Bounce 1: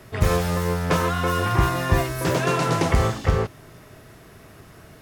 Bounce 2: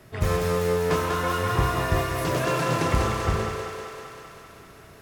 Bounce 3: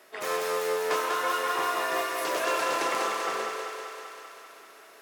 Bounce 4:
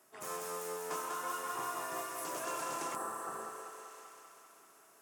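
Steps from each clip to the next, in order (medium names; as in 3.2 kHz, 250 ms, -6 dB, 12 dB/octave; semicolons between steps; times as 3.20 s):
on a send: thinning echo 195 ms, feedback 72%, high-pass 290 Hz, level -4 dB; on the sum: spring tank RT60 1.1 s, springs 32 ms, chirp 50 ms, DRR 6.5 dB; trim -5 dB
Bessel high-pass 530 Hz, order 4
spectral replace 2.98–3.95 s, 1.9–7.4 kHz after; graphic EQ 125/500/2000/4000/8000 Hz +6/-9/-9/-10/+5 dB; trim -6 dB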